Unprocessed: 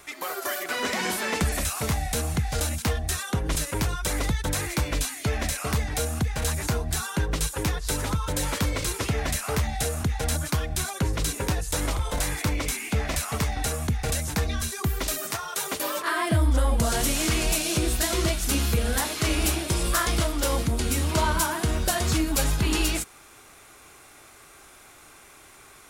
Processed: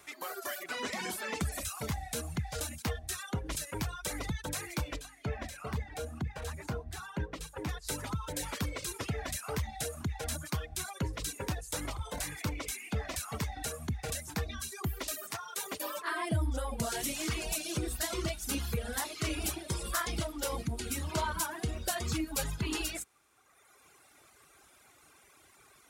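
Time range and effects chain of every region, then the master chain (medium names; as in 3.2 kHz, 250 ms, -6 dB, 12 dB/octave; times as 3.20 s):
4.96–7.69 s: treble shelf 3.5 kHz -12 dB + hum notches 50/100/150/200/250/300/350 Hz
whole clip: reverb removal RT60 1.5 s; high-pass 54 Hz; trim -7.5 dB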